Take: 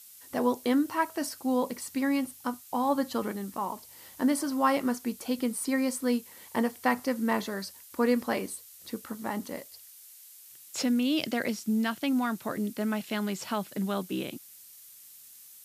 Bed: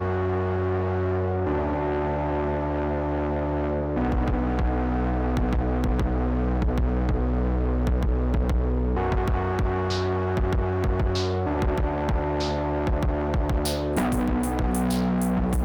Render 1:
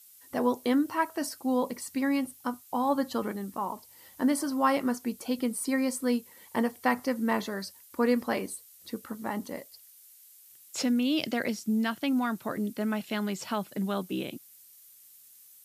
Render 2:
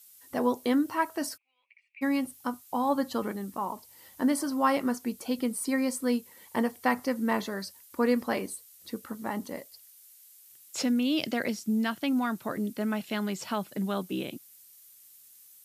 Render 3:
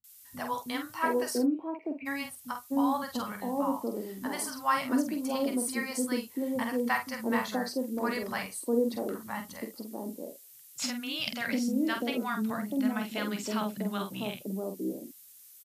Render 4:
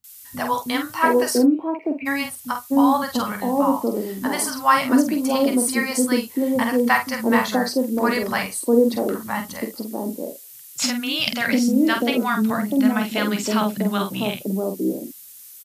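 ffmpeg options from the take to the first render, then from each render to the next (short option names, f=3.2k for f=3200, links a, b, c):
-af "afftdn=nr=6:nf=-52"
-filter_complex "[0:a]asplit=3[a][b][c];[a]afade=t=out:st=1.36:d=0.02[d];[b]asuperpass=centerf=2400:order=4:qfactor=5.9,afade=t=in:st=1.36:d=0.02,afade=t=out:st=2.01:d=0.02[e];[c]afade=t=in:st=2.01:d=0.02[f];[d][e][f]amix=inputs=3:normalize=0"
-filter_complex "[0:a]asplit=2[a][b];[b]adelay=47,volume=-6.5dB[c];[a][c]amix=inputs=2:normalize=0,acrossover=split=200|690[d][e][f];[f]adelay=40[g];[e]adelay=690[h];[d][h][g]amix=inputs=3:normalize=0"
-af "volume=11dB"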